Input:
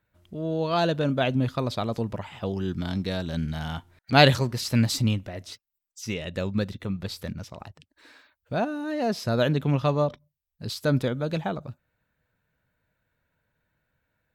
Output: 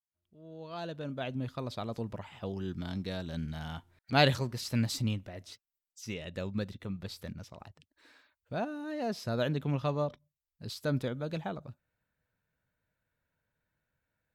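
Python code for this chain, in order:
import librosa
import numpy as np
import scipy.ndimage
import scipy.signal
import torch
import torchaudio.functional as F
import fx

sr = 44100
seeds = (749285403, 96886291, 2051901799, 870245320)

y = fx.fade_in_head(x, sr, length_s=2.1)
y = y * librosa.db_to_amplitude(-8.0)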